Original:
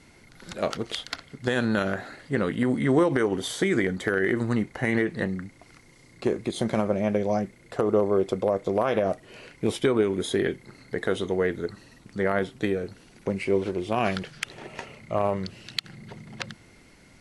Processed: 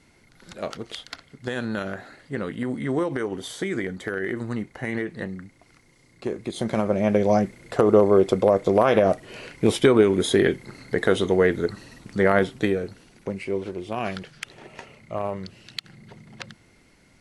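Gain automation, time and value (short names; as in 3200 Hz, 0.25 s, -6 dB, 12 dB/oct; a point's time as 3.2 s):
6.24 s -4 dB
7.29 s +6 dB
12.4 s +6 dB
13.44 s -3.5 dB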